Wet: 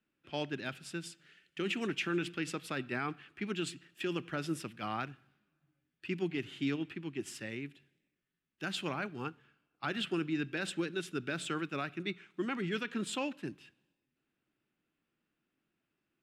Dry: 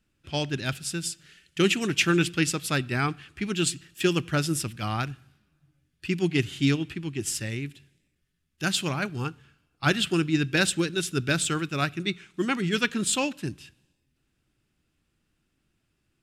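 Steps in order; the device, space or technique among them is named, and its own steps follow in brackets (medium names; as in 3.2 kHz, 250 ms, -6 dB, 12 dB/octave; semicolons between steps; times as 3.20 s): DJ mixer with the lows and highs turned down (three-band isolator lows -19 dB, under 170 Hz, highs -13 dB, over 3.3 kHz; peak limiter -19 dBFS, peak gain reduction 9.5 dB); trim -5.5 dB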